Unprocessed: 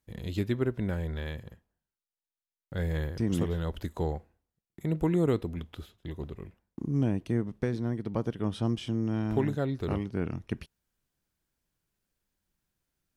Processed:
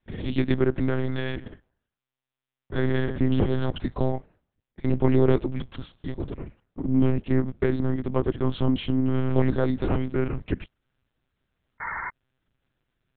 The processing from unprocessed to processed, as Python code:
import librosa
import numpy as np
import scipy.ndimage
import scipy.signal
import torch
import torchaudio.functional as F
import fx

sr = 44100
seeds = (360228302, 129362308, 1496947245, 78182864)

y = fx.spec_paint(x, sr, seeds[0], shape='noise', start_s=11.8, length_s=0.3, low_hz=760.0, high_hz=2200.0, level_db=-39.0)
y = fx.lpc_monotone(y, sr, seeds[1], pitch_hz=130.0, order=8)
y = y * librosa.db_to_amplitude(7.0)